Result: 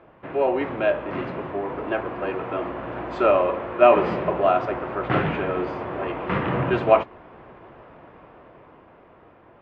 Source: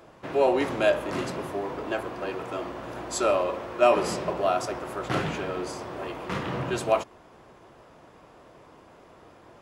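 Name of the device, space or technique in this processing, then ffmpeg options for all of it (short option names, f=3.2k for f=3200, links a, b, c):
action camera in a waterproof case: -af "lowpass=f=2.7k:w=0.5412,lowpass=f=2.7k:w=1.3066,dynaudnorm=f=390:g=9:m=8.5dB" -ar 24000 -c:a aac -b:a 64k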